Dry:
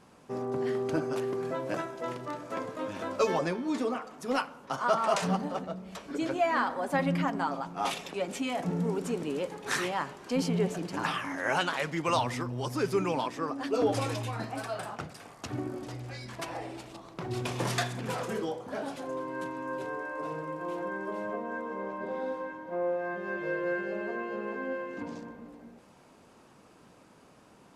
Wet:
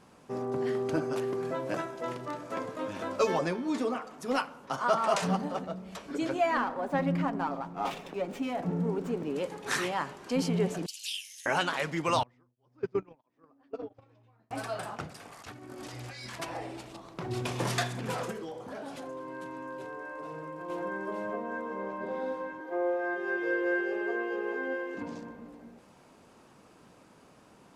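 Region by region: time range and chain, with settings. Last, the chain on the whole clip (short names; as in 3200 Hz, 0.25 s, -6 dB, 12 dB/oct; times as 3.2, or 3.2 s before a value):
6.57–9.36 high shelf 2300 Hz -10 dB + running maximum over 3 samples
10.86–11.46 steep high-pass 2800 Hz 48 dB/oct + tilt +3 dB/oct
12.23–14.51 gate -27 dBFS, range -27 dB + tape spacing loss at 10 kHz 27 dB + beating tremolo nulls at 1.5 Hz
15.32–16.4 tilt shelf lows -5 dB, about 840 Hz + negative-ratio compressor -44 dBFS
18.31–20.7 hard clip -27 dBFS + compressor 4:1, threshold -37 dBFS
22.6–24.95 HPF 220 Hz 24 dB/oct + comb 2.5 ms, depth 73%
whole clip: dry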